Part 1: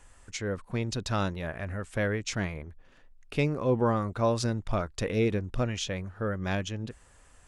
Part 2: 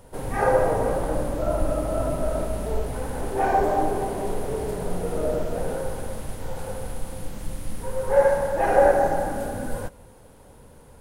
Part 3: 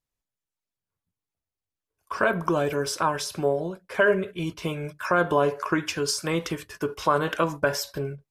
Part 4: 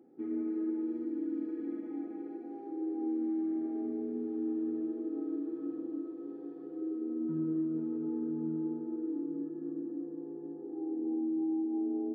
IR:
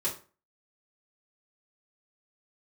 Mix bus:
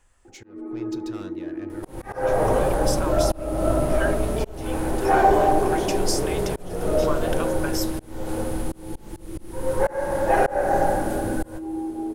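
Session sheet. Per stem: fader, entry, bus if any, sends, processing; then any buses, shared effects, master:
-7.5 dB, 0.00 s, send -17.5 dB, soft clip -30.5 dBFS, distortion -7 dB
+2.0 dB, 1.70 s, send -14 dB, dry
-9.0 dB, 0.00 s, no send, tilt +3.5 dB/oct
+0.5 dB, 0.25 s, send -8 dB, reverb removal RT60 0.68 s; bell 900 Hz +13 dB 1.8 oct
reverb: on, RT60 0.35 s, pre-delay 3 ms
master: auto swell 0.342 s

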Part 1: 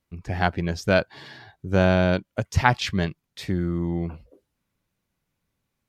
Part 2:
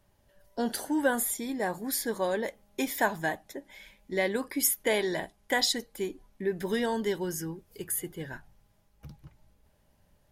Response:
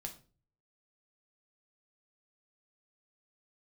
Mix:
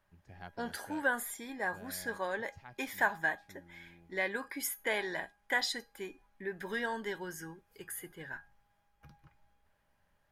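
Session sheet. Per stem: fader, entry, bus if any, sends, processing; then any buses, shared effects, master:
-13.0 dB, 0.00 s, no send, auto duck -11 dB, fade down 1.35 s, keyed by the second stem
-2.0 dB, 0.00 s, no send, bell 1500 Hz +12.5 dB 1.9 oct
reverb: off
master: resonator 820 Hz, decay 0.28 s, mix 70%

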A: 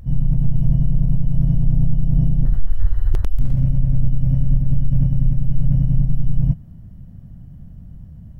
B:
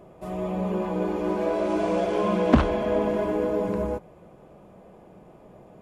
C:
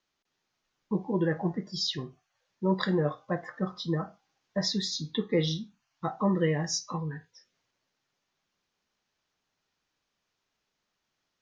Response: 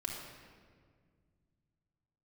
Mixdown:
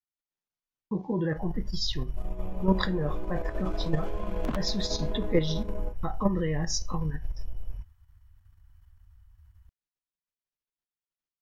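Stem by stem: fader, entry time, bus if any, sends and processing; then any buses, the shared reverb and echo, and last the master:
-2.0 dB, 1.30 s, no send, inverse Chebyshev band-stop 160–500 Hz, stop band 50 dB; low shelf 130 Hz -10.5 dB
-9.5 dB, 1.95 s, no send, dry
+2.5 dB, 0.00 s, no send, gate with hold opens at -46 dBFS; low shelf 100 Hz +9 dB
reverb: off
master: level quantiser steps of 9 dB

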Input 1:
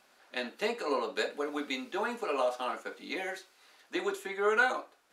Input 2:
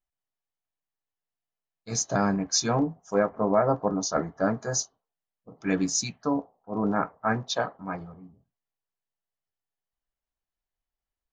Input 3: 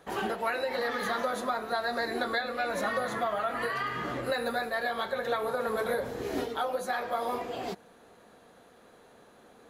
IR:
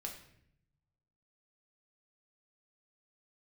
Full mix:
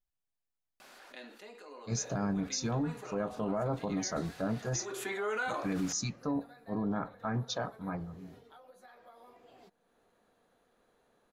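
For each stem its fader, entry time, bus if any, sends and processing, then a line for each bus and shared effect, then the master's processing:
1.51 s -21 dB -> 2.13 s -10.5 dB -> 4.77 s -10.5 dB -> 5.04 s -0.5 dB, 0.80 s, no send, fast leveller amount 70%; auto duck -9 dB, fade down 0.70 s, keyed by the second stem
-6.5 dB, 0.00 s, send -21 dB, low shelf 240 Hz +9.5 dB
-14.5 dB, 1.95 s, no send, compressor 2:1, threshold -48 dBFS, peak gain reduction 13 dB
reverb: on, RT60 0.70 s, pre-delay 5 ms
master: limiter -25 dBFS, peak gain reduction 10 dB

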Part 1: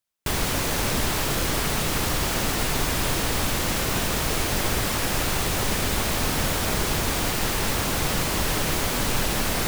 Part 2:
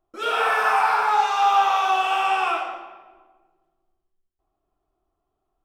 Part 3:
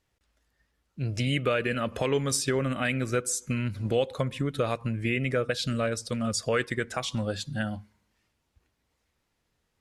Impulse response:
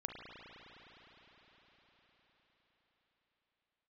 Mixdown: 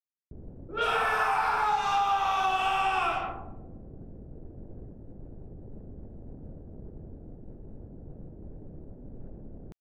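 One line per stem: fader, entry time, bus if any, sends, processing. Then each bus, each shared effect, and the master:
-16.0 dB, 0.05 s, no send, median filter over 41 samples
-2.0 dB, 0.55 s, no send, dry
off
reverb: off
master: low-pass opened by the level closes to 300 Hz, open at -21.5 dBFS; compressor 6:1, threshold -23 dBFS, peak gain reduction 7.5 dB

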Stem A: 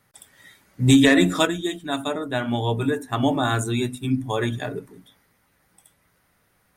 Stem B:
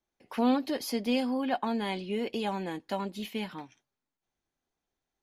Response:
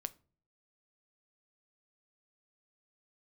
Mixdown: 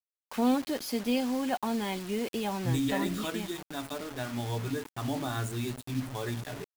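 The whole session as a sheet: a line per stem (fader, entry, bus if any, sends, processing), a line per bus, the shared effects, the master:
-12.0 dB, 1.85 s, no send, limiter -12 dBFS, peak gain reduction 7 dB
3.23 s -1.5 dB -> 3.69 s -10.5 dB, 0.00 s, no send, dry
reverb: off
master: low shelf 120 Hz +8 dB; bit-crush 7-bit

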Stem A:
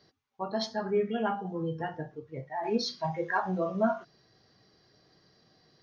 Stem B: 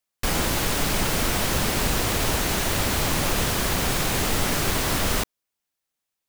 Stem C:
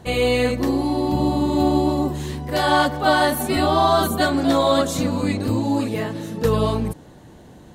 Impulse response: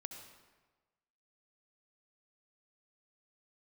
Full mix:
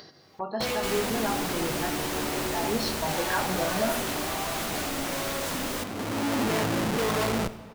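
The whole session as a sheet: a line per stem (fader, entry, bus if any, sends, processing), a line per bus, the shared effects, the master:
-1.0 dB, 0.00 s, bus A, send -3.5 dB, dry
-8.5 dB, 0.60 s, no bus, no send, dry
-2.0 dB, 0.55 s, bus A, send -7.5 dB, Schmitt trigger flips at -31.5 dBFS; auto duck -22 dB, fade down 1.25 s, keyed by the first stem
bus A: 0.0 dB, gate with hold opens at -37 dBFS; compressor, threshold -28 dBFS, peak gain reduction 7 dB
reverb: on, RT60 1.3 s, pre-delay 61 ms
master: low shelf 120 Hz -10 dB; upward compressor, threshold -31 dBFS

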